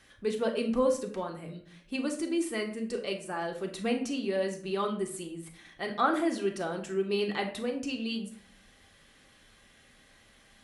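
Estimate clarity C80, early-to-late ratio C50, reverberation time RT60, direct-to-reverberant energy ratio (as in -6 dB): 13.5 dB, 9.5 dB, 0.55 s, 2.5 dB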